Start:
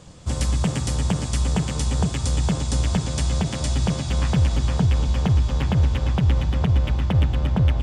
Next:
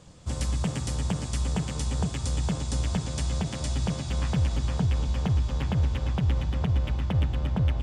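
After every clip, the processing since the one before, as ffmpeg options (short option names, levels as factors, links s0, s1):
-af "bandreject=f=368.8:t=h:w=4,bandreject=f=737.6:t=h:w=4,bandreject=f=1106.4:t=h:w=4,bandreject=f=1475.2:t=h:w=4,bandreject=f=1844:t=h:w=4,bandreject=f=2212.8:t=h:w=4,bandreject=f=2581.6:t=h:w=4,bandreject=f=2950.4:t=h:w=4,bandreject=f=3319.2:t=h:w=4,bandreject=f=3688:t=h:w=4,bandreject=f=4056.8:t=h:w=4,bandreject=f=4425.6:t=h:w=4,bandreject=f=4794.4:t=h:w=4,bandreject=f=5163.2:t=h:w=4,bandreject=f=5532:t=h:w=4,bandreject=f=5900.8:t=h:w=4,bandreject=f=6269.6:t=h:w=4,bandreject=f=6638.4:t=h:w=4,bandreject=f=7007.2:t=h:w=4,bandreject=f=7376:t=h:w=4,bandreject=f=7744.8:t=h:w=4,bandreject=f=8113.6:t=h:w=4,bandreject=f=8482.4:t=h:w=4,bandreject=f=8851.2:t=h:w=4,bandreject=f=9220:t=h:w=4,bandreject=f=9588.8:t=h:w=4,bandreject=f=9957.6:t=h:w=4,bandreject=f=10326.4:t=h:w=4,bandreject=f=10695.2:t=h:w=4,bandreject=f=11064:t=h:w=4,bandreject=f=11432.8:t=h:w=4,bandreject=f=11801.6:t=h:w=4,bandreject=f=12170.4:t=h:w=4,bandreject=f=12539.2:t=h:w=4,bandreject=f=12908:t=h:w=4,bandreject=f=13276.8:t=h:w=4,volume=0.501"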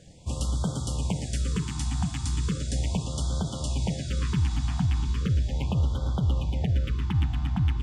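-af "afftfilt=real='re*(1-between(b*sr/1024,460*pow(2200/460,0.5+0.5*sin(2*PI*0.37*pts/sr))/1.41,460*pow(2200/460,0.5+0.5*sin(2*PI*0.37*pts/sr))*1.41))':imag='im*(1-between(b*sr/1024,460*pow(2200/460,0.5+0.5*sin(2*PI*0.37*pts/sr))/1.41,460*pow(2200/460,0.5+0.5*sin(2*PI*0.37*pts/sr))*1.41))':win_size=1024:overlap=0.75"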